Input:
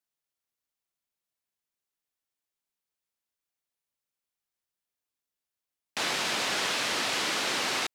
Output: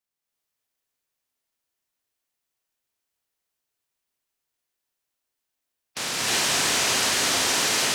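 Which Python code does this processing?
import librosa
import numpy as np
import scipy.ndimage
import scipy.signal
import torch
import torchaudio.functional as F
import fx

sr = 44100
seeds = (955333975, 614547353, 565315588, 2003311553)

y = fx.spec_clip(x, sr, under_db=15)
y = fx.rev_gated(y, sr, seeds[0], gate_ms=370, shape='rising', drr_db=-6.0)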